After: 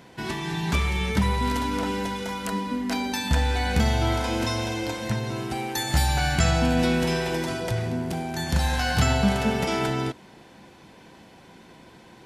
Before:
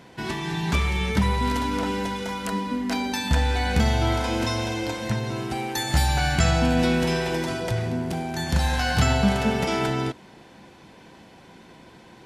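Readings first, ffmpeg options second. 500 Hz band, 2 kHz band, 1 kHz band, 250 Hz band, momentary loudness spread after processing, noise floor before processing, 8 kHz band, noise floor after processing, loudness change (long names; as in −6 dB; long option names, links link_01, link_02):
−1.0 dB, −1.0 dB, −1.0 dB, −1.0 dB, 8 LU, −49 dBFS, 0.0 dB, −50 dBFS, −1.0 dB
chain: -af "highshelf=frequency=11000:gain=5,volume=-1dB"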